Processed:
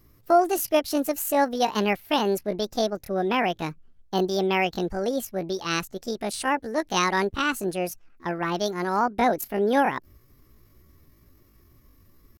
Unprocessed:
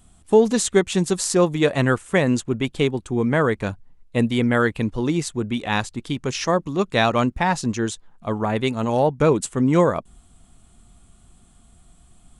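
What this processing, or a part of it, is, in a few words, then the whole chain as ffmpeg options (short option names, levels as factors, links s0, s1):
chipmunk voice: -af "asetrate=70004,aresample=44100,atempo=0.629961,volume=0.596"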